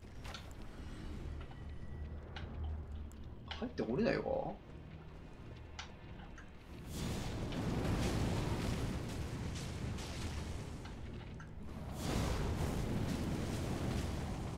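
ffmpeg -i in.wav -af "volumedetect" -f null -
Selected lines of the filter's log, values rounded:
mean_volume: -40.7 dB
max_volume: -21.2 dB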